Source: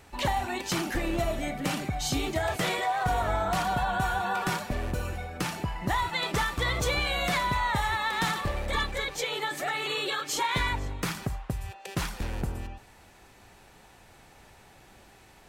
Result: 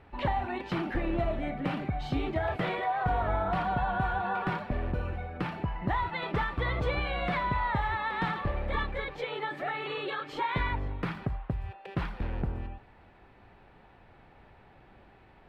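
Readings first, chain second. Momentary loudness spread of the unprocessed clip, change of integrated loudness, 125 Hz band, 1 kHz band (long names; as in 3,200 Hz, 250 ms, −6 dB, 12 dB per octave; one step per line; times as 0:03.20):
8 LU, −2.5 dB, 0.0 dB, −2.0 dB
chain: high-frequency loss of the air 440 metres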